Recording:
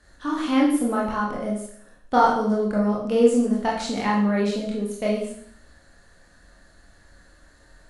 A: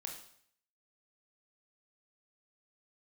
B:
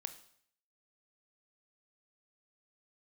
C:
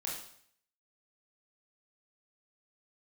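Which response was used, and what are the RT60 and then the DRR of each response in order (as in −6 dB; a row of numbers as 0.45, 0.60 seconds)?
C; 0.60, 0.60, 0.60 seconds; 0.5, 9.0, −4.5 decibels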